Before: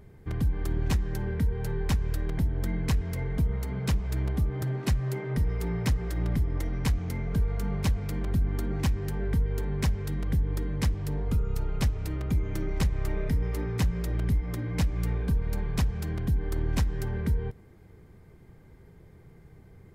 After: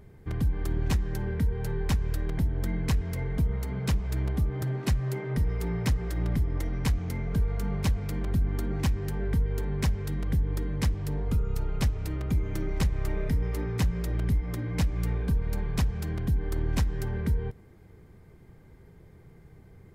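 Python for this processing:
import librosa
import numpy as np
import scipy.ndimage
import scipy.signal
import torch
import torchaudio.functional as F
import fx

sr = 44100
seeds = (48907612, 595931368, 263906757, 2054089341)

y = fx.dmg_noise_colour(x, sr, seeds[0], colour='brown', level_db=-54.0, at=(12.27, 13.4), fade=0.02)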